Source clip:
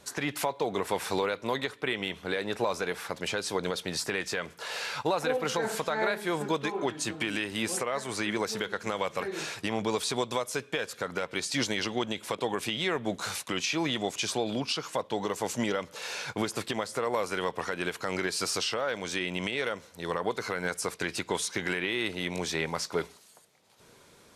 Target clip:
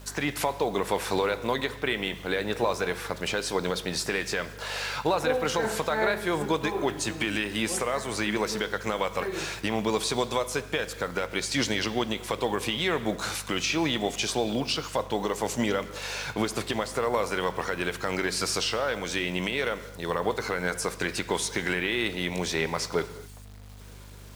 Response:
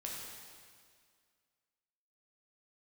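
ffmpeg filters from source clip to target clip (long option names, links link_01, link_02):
-filter_complex "[0:a]aeval=exprs='val(0)+0.00398*(sin(2*PI*50*n/s)+sin(2*PI*2*50*n/s)/2+sin(2*PI*3*50*n/s)/3+sin(2*PI*4*50*n/s)/4+sin(2*PI*5*50*n/s)/5)':channel_layout=same,acrusher=bits=8:mix=0:aa=0.000001,asplit=2[link_01][link_02];[1:a]atrim=start_sample=2205,afade=type=out:start_time=0.31:duration=0.01,atrim=end_sample=14112,highshelf=frequency=8300:gain=-11.5[link_03];[link_02][link_03]afir=irnorm=-1:irlink=0,volume=-8dB[link_04];[link_01][link_04]amix=inputs=2:normalize=0,volume=1dB"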